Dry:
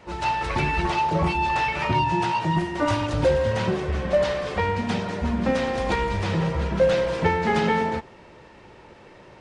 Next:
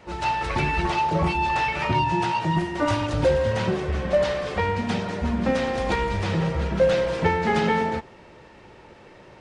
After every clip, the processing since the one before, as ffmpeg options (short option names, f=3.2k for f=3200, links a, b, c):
-af "bandreject=f=1k:w=25"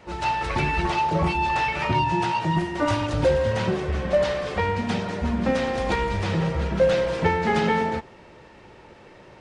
-af anull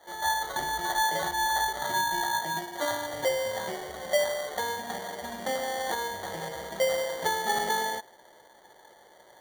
-af "bandpass=f=760:t=q:w=2.6:csg=0,acrusher=samples=17:mix=1:aa=0.000001"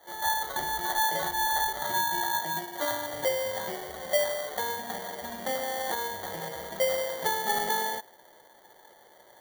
-af "aexciter=amount=2.8:drive=2:freq=11k,volume=-1dB"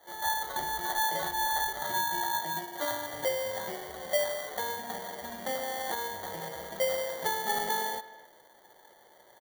-filter_complex "[0:a]asplit=2[a][b];[b]adelay=260,highpass=300,lowpass=3.4k,asoftclip=type=hard:threshold=-22dB,volume=-16dB[c];[a][c]amix=inputs=2:normalize=0,volume=-2.5dB"